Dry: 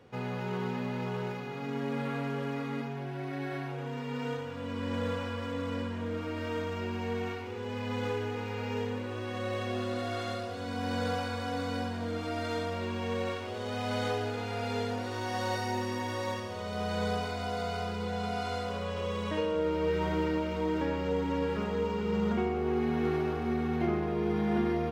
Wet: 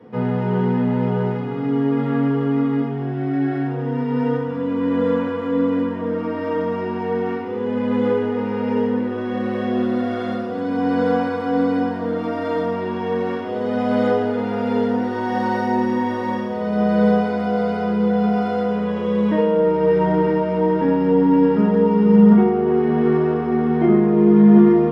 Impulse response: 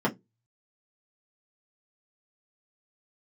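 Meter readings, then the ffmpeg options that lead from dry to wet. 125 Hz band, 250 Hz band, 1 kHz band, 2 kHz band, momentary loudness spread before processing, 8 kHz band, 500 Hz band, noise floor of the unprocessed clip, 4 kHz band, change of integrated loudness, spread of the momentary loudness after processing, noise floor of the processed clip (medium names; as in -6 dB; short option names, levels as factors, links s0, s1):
+11.0 dB, +17.0 dB, +11.0 dB, +7.0 dB, 7 LU, no reading, +13.5 dB, -38 dBFS, 0.0 dB, +14.0 dB, 9 LU, -25 dBFS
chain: -filter_complex "[1:a]atrim=start_sample=2205[s0];[0:a][s0]afir=irnorm=-1:irlink=0,volume=0.668"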